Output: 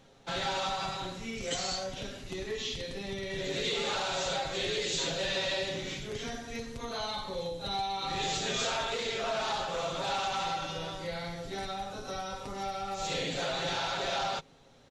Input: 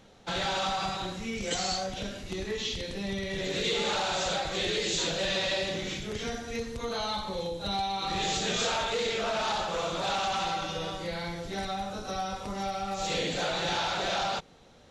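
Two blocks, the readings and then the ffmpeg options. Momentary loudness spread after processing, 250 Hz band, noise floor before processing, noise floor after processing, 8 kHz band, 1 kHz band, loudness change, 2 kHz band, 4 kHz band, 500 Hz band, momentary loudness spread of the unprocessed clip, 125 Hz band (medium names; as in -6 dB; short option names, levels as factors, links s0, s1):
8 LU, -5.0 dB, -53 dBFS, -55 dBFS, -2.5 dB, -3.0 dB, -2.5 dB, -2.5 dB, -2.5 dB, -2.5 dB, 7 LU, -3.0 dB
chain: -af "aecho=1:1:7.4:0.46,volume=0.668"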